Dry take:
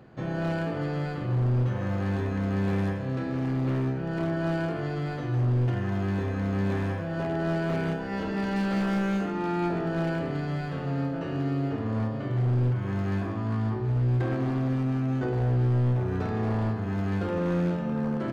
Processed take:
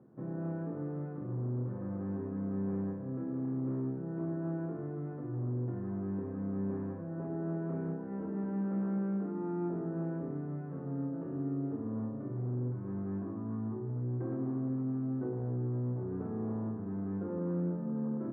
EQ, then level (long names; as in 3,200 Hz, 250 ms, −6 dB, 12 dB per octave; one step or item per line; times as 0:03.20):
high-pass filter 220 Hz 12 dB per octave
low-pass filter 1,000 Hz 24 dB per octave
parametric band 730 Hz −14.5 dB 1.6 octaves
0.0 dB